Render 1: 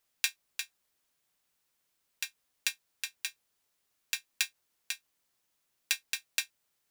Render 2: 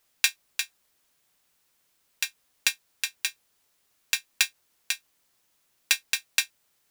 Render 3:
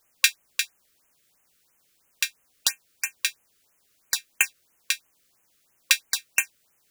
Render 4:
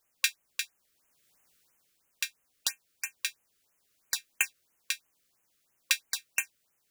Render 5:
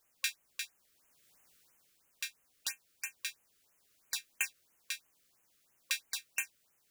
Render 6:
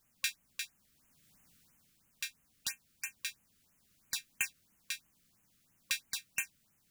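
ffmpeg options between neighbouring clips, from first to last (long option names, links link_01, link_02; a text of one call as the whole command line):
ffmpeg -i in.wav -af "asoftclip=type=hard:threshold=-13.5dB,volume=8dB" out.wav
ffmpeg -i in.wav -af "afftfilt=real='re*(1-between(b*sr/1024,770*pow(4500/770,0.5+0.5*sin(2*PI*3*pts/sr))/1.41,770*pow(4500/770,0.5+0.5*sin(2*PI*3*pts/sr))*1.41))':imag='im*(1-between(b*sr/1024,770*pow(4500/770,0.5+0.5*sin(2*PI*3*pts/sr))/1.41,770*pow(4500/770,0.5+0.5*sin(2*PI*3*pts/sr))*1.41))':win_size=1024:overlap=0.75,volume=3.5dB" out.wav
ffmpeg -i in.wav -af "dynaudnorm=framelen=150:gausssize=9:maxgain=11dB,volume=-8dB" out.wav
ffmpeg -i in.wav -af "alimiter=limit=-20.5dB:level=0:latency=1:release=47,volume=1.5dB" out.wav
ffmpeg -i in.wav -af "lowshelf=frequency=300:width_type=q:width=1.5:gain=10.5" out.wav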